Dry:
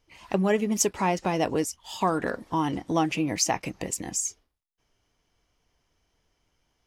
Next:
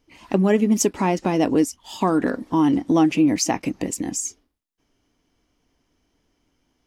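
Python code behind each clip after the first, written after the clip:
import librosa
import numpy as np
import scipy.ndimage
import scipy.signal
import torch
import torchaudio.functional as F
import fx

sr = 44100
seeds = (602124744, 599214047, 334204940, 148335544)

y = fx.peak_eq(x, sr, hz=270.0, db=12.0, octaves=0.81)
y = y * 10.0 ** (1.5 / 20.0)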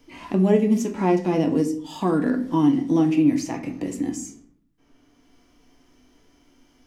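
y = fx.hpss(x, sr, part='percussive', gain_db=-12)
y = fx.room_shoebox(y, sr, seeds[0], volume_m3=50.0, walls='mixed', distance_m=0.34)
y = fx.band_squash(y, sr, depth_pct=40)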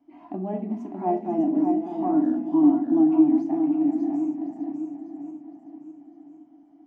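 y = fx.reverse_delay_fb(x, sr, ms=531, feedback_pct=54, wet_db=-9.0)
y = fx.double_bandpass(y, sr, hz=470.0, octaves=1.2)
y = y + 10.0 ** (-5.5 / 20.0) * np.pad(y, (int(602 * sr / 1000.0), 0))[:len(y)]
y = y * 10.0 ** (2.5 / 20.0)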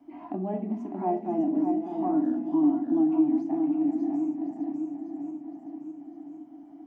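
y = fx.band_squash(x, sr, depth_pct=40)
y = y * 10.0 ** (-3.5 / 20.0)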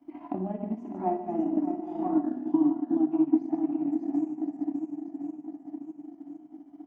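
y = fx.notch(x, sr, hz=410.0, q=12.0)
y = fx.echo_multitap(y, sr, ms=(59, 146), db=(-8.0, -8.0))
y = fx.transient(y, sr, attack_db=7, sustain_db=-7)
y = y * 10.0 ** (-4.0 / 20.0)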